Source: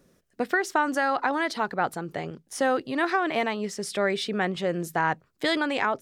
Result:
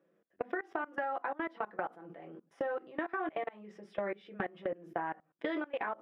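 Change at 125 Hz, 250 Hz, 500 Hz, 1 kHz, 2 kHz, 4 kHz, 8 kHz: −17.5 dB, −12.5 dB, −10.0 dB, −11.5 dB, −13.0 dB, −22.5 dB, below −35 dB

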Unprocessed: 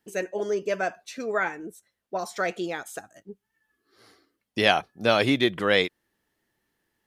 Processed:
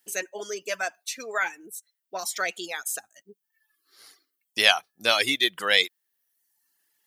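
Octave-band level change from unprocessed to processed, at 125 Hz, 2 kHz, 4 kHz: −16.5, +2.0, +6.0 decibels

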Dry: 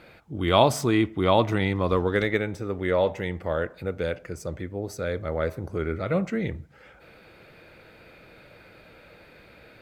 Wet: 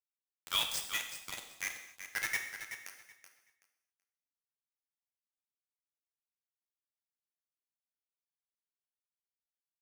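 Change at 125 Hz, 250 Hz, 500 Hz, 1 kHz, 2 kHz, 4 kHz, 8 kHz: −37.0, −38.0, −36.5, −22.0, −8.0, −4.5, −1.0 decibels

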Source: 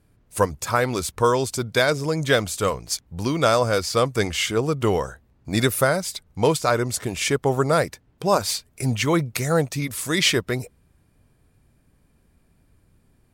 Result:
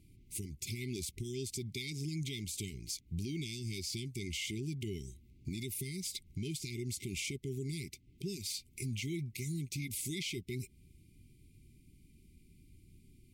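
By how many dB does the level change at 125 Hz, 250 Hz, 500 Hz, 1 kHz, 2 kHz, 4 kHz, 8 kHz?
−13.0 dB, −15.0 dB, −25.5 dB, below −40 dB, −20.5 dB, −15.5 dB, −13.0 dB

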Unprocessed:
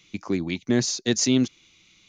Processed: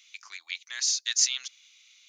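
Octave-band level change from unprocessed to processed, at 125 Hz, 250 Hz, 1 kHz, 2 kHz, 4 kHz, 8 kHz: below −40 dB, below −40 dB, below −10 dB, −2.0 dB, +1.0 dB, +2.0 dB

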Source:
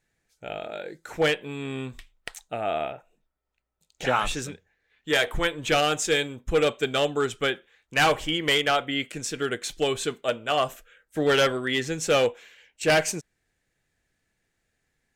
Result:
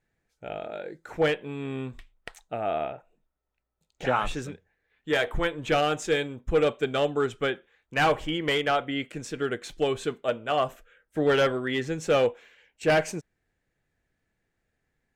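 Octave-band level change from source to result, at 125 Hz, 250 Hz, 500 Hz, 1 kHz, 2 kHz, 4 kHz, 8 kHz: 0.0, 0.0, −0.5, −1.5, −3.5, −6.5, −10.0 decibels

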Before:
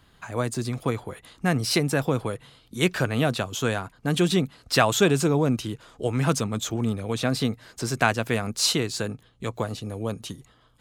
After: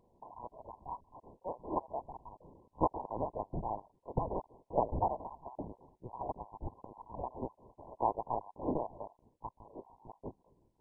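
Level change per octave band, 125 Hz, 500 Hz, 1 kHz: −20.0, −13.0, −6.0 decibels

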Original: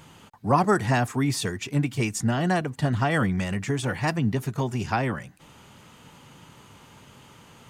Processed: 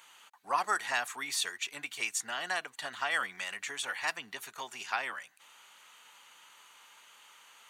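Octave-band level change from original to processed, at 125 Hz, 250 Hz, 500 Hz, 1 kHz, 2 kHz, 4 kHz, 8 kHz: −39.0, −29.0, −16.0, −7.5, −2.5, −0.5, −2.0 decibels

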